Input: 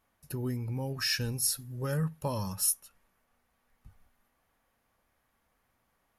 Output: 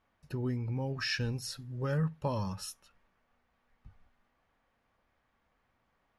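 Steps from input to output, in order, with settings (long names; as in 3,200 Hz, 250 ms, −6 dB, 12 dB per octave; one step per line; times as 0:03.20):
low-pass filter 4,100 Hz 12 dB per octave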